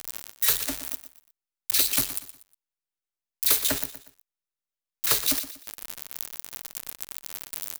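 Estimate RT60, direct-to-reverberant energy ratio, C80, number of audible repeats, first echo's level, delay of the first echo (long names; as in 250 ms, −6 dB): no reverb audible, no reverb audible, no reverb audible, 3, −13.0 dB, 120 ms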